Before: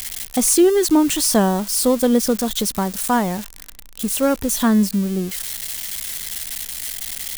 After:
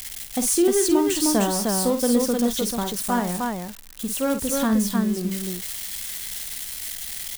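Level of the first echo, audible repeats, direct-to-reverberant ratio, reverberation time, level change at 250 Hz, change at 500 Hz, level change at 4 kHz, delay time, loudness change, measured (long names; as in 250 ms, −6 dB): −8.5 dB, 2, no reverb audible, no reverb audible, −4.0 dB, −4.0 dB, −4.0 dB, 50 ms, −4.0 dB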